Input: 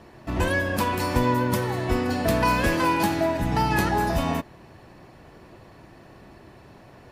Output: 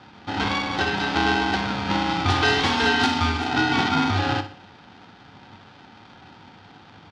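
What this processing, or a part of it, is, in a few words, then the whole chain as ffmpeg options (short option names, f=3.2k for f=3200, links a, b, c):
ring modulator pedal into a guitar cabinet: -filter_complex "[0:a]asettb=1/sr,asplit=3[a][b][c];[a]atrim=end=2.304[d];[b]atrim=start=2.3:end=3.51,asetpts=PTS-STARTPTS,afade=t=in:d=0.004:c=qsin,afade=t=out:st=1.206:d=0.004:c=qsin,aemphasis=mode=production:type=75fm[e];[c]atrim=start=3.506[f];[d][e]acrossfade=d=0.004:c1=hsin:c2=qsin[g];[g][f]acrossfade=d=0.004:c1=qsin:c2=hsin,highpass=f=160:w=0.5412,highpass=f=160:w=1.3066,aeval=exprs='val(0)*sgn(sin(2*PI*570*n/s))':c=same,highpass=100,equalizer=f=100:t=q:w=4:g=9,equalizer=f=390:t=q:w=4:g=-8,equalizer=f=1.1k:t=q:w=4:g=-8,equalizer=f=2.2k:t=q:w=4:g=-7,lowpass=f=4.5k:w=0.5412,lowpass=f=4.5k:w=1.3066,aecho=1:1:61|122|183|244:0.251|0.098|0.0382|0.0149,volume=4.5dB"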